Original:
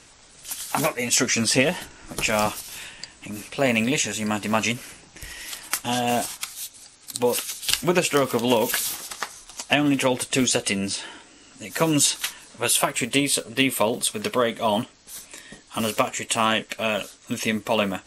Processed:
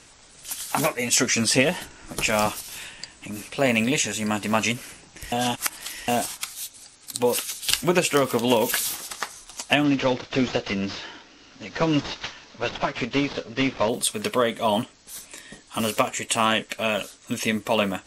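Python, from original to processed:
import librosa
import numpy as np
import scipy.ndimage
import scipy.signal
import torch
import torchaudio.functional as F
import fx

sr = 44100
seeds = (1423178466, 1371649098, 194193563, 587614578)

y = fx.cvsd(x, sr, bps=32000, at=(9.84, 13.89))
y = fx.edit(y, sr, fx.reverse_span(start_s=5.32, length_s=0.76), tone=tone)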